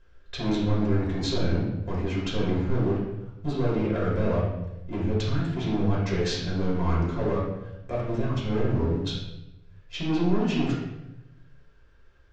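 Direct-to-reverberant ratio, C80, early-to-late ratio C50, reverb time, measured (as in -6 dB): -6.5 dB, 5.0 dB, 1.5 dB, 0.95 s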